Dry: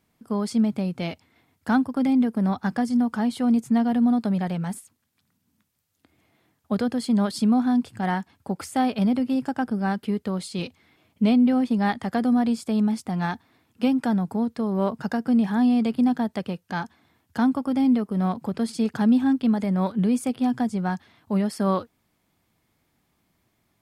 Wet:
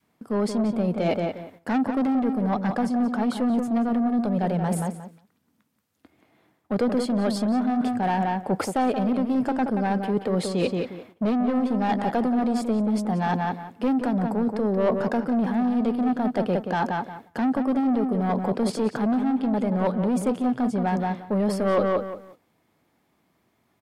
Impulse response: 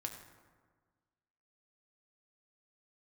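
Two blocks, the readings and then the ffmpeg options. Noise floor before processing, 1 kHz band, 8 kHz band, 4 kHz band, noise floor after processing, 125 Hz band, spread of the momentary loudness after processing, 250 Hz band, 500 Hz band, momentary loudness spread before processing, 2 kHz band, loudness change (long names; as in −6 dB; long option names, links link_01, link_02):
−72 dBFS, +3.0 dB, −0.5 dB, −1.5 dB, −69 dBFS, 0.0 dB, 4 LU, −1.5 dB, +5.0 dB, 10 LU, 0.0 dB, −0.5 dB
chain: -filter_complex "[0:a]highpass=frequency=250:poles=1,highshelf=frequency=2200:gain=-8.5,asoftclip=type=tanh:threshold=-25.5dB,asplit=2[link_01][link_02];[link_02]adelay=179,lowpass=frequency=3200:poles=1,volume=-7.5dB,asplit=2[link_03][link_04];[link_04]adelay=179,lowpass=frequency=3200:poles=1,volume=0.24,asplit=2[link_05][link_06];[link_06]adelay=179,lowpass=frequency=3200:poles=1,volume=0.24[link_07];[link_01][link_03][link_05][link_07]amix=inputs=4:normalize=0,areverse,acompressor=threshold=-37dB:ratio=6,areverse,adynamicequalizer=threshold=0.00178:dfrequency=510:dqfactor=1.1:tfrequency=510:tqfactor=1.1:attack=5:release=100:ratio=0.375:range=3.5:mode=boostabove:tftype=bell,acontrast=71,agate=range=-8dB:threshold=-54dB:ratio=16:detection=peak,volume=6.5dB"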